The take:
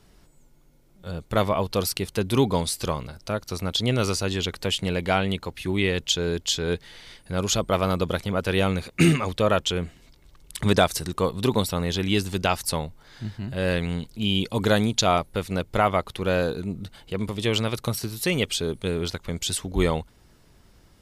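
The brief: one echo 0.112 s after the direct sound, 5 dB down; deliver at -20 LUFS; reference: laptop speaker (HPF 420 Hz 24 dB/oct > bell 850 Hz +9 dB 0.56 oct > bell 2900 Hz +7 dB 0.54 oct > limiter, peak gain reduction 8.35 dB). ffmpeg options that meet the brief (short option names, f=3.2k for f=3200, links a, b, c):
-af "highpass=f=420:w=0.5412,highpass=f=420:w=1.3066,equalizer=f=850:t=o:w=0.56:g=9,equalizer=f=2.9k:t=o:w=0.54:g=7,aecho=1:1:112:0.562,volume=4.5dB,alimiter=limit=-6.5dB:level=0:latency=1"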